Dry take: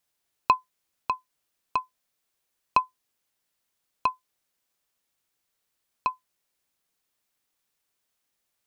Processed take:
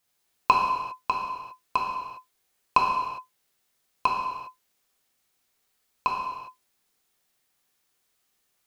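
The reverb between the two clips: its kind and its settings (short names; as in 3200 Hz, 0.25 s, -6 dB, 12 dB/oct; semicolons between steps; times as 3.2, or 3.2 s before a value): non-linear reverb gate 0.43 s falling, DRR -2.5 dB; gain +1.5 dB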